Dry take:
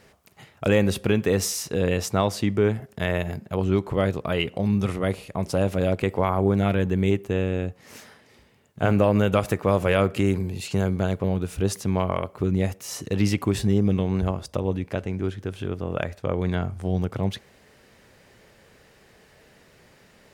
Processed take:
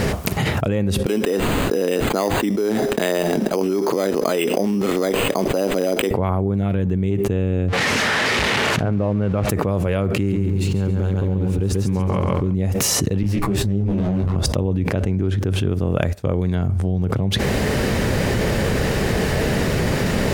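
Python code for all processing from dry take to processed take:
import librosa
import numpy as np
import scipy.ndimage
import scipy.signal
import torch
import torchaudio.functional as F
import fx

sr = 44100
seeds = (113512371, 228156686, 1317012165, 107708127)

y = fx.chain(x, sr, fx.highpass(hz=270.0, slope=24),
    fx.resample_bad(factor=8, down='none', up='hold'), at=(1.06, 6.11))
y = fx.chain(y, sr, fx.crossing_spikes(level_db=-14.5),
    fx.lowpass(hz=2000.0, slope=12), at=(7.68, 9.49))
y = fx.chain(y, sr, fx.notch(hz=660.0, q=5.3),
    fx.backlash(play_db=-41.0),
    fx.echo_feedback(ms=138, feedback_pct=39, wet_db=-4.0), at=(10.13, 12.55))
y = fx.chain(y, sr, fx.lower_of_two(delay_ms=9.8),
    fx.detune_double(cents=33), at=(13.23, 14.36))
y = fx.chain(y, sr, fx.high_shelf(hz=5200.0, db=10.5),
    fx.upward_expand(threshold_db=-42.0, expansion=2.5), at=(15.69, 16.69))
y = fx.low_shelf(y, sr, hz=460.0, db=10.5)
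y = fx.env_flatten(y, sr, amount_pct=100)
y = y * 10.0 ** (-10.0 / 20.0)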